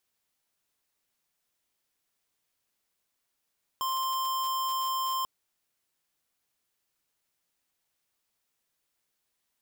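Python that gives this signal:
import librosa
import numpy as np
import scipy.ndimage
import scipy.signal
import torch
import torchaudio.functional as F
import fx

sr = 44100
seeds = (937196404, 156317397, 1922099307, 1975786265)

y = fx.tone(sr, length_s=1.44, wave='square', hz=1050.0, level_db=-30.0)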